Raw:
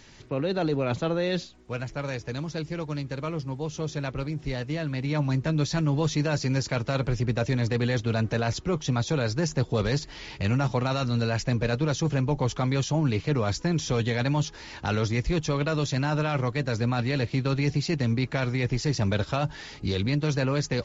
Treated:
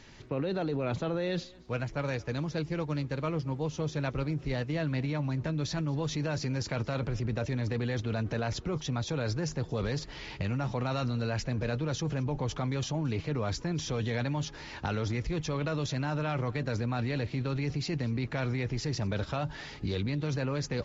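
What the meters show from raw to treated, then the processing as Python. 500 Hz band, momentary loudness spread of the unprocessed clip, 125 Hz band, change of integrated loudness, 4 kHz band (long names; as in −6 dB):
−5.5 dB, 7 LU, −5.5 dB, −5.5 dB, −5.5 dB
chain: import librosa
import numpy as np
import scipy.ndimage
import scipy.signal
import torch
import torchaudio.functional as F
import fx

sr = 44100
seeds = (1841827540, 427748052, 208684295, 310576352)

p1 = fx.high_shelf(x, sr, hz=6300.0, db=-10.0)
p2 = fx.over_compress(p1, sr, threshold_db=-29.0, ratio=-0.5)
p3 = p1 + (p2 * librosa.db_to_amplitude(0.0))
p4 = p3 + 10.0 ** (-24.0 / 20.0) * np.pad(p3, (int(226 * sr / 1000.0), 0))[:len(p3)]
y = p4 * librosa.db_to_amplitude(-9.0)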